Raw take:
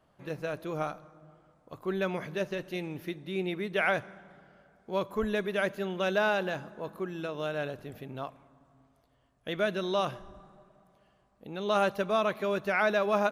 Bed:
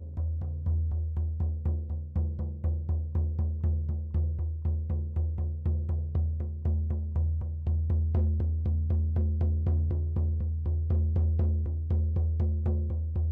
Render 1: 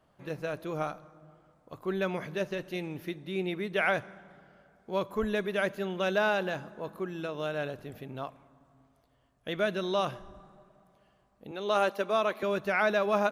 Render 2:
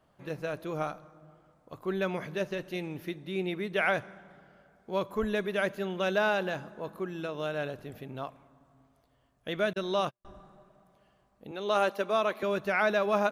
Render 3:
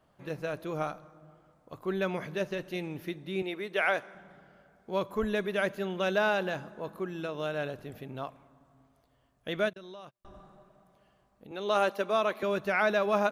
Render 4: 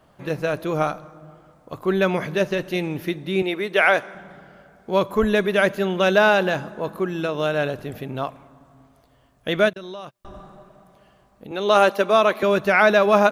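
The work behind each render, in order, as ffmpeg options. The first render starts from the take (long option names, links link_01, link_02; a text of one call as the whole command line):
ffmpeg -i in.wav -filter_complex "[0:a]asettb=1/sr,asplit=3[link_01][link_02][link_03];[link_01]atrim=end=11.514[link_04];[link_02]atrim=start=11.51:end=12.43,asetpts=PTS-STARTPTS,afade=type=in:duration=0.004:curve=qsin,afade=type=out:start_time=0.916:duration=0.004:curve=qsin,highpass=frequency=230:width=0.5412,highpass=frequency=230:width=1.3066[link_05];[link_03]atrim=start=12.426[link_06];[link_04][link_05]acrossfade=duration=0.004:curve1=hsin:curve2=qsin[link_07];[link_07][link_06]acrossfade=duration=0.004:curve1=qsin:curve2=hsin" out.wav
ffmpeg -i in.wav -filter_complex "[0:a]asettb=1/sr,asplit=3[link_01][link_02][link_03];[link_01]atrim=end=9.734[link_04];[link_02]atrim=start=9.73:end=10.25,asetpts=PTS-STARTPTS,afade=type=in:duration=0.004:curve=qsin,afade=type=out:start_time=0.516:duration=0.004:curve=qsin,agate=range=-48dB:threshold=-34dB:ratio=16:release=100:detection=peak[link_05];[link_03]atrim=start=10.246[link_06];[link_04][link_05]acrossfade=duration=0.004:curve1=hsin:curve2=qsin[link_07];[link_07][link_06]acrossfade=duration=0.004:curve1=qsin:curve2=hsin" out.wav
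ffmpeg -i in.wav -filter_complex "[0:a]asettb=1/sr,asplit=3[link_01][link_02][link_03];[link_01]atrim=end=3.424[link_04];[link_02]atrim=start=3.42:end=4.15,asetpts=PTS-STARTPTS,afade=type=in:duration=0.004:curve=qsin,afade=type=out:start_time=0.726:duration=0.004:curve=qsin,highpass=320[link_05];[link_03]atrim=start=4.146[link_06];[link_04][link_05]acrossfade=duration=0.004:curve1=hsin:curve2=qsin[link_07];[link_07][link_06]acrossfade=duration=0.004:curve1=qsin:curve2=hsin,asplit=3[link_08][link_09][link_10];[link_08]afade=type=out:start_time=9.68:duration=0.02[link_11];[link_09]acompressor=threshold=-45dB:ratio=5:attack=3.2:release=140:knee=1:detection=peak,afade=type=in:start_time=9.68:duration=0.02,afade=type=out:start_time=11.5:duration=0.02[link_12];[link_10]afade=type=in:start_time=11.5:duration=0.02[link_13];[link_11][link_12][link_13]amix=inputs=3:normalize=0" out.wav
ffmpeg -i in.wav -af "volume=11dB,alimiter=limit=-3dB:level=0:latency=1" out.wav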